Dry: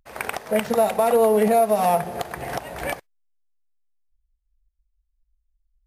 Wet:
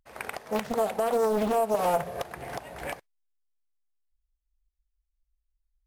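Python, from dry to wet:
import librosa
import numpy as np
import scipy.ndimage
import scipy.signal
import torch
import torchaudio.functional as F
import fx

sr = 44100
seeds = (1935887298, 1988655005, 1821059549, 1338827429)

y = fx.comb(x, sr, ms=1.8, depth=0.89, at=(1.74, 2.23))
y = fx.doppler_dist(y, sr, depth_ms=0.81)
y = y * 10.0 ** (-7.5 / 20.0)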